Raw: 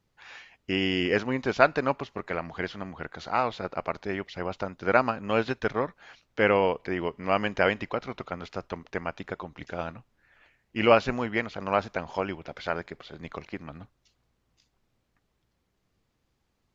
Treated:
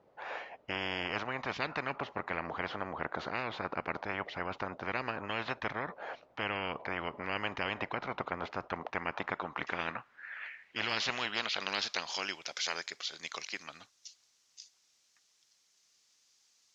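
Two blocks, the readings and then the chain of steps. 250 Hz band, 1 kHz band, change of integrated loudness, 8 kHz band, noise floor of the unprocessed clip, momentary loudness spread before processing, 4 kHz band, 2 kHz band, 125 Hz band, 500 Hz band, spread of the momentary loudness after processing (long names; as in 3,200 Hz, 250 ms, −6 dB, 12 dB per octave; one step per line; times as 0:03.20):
−12.0 dB, −7.5 dB, −8.5 dB, can't be measured, −75 dBFS, 17 LU, 0.0 dB, −4.5 dB, −10.0 dB, −13.5 dB, 10 LU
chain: band-pass filter sweep 600 Hz → 6,000 Hz, 0:08.53–0:12.40
every bin compressed towards the loudest bin 10 to 1
level −4.5 dB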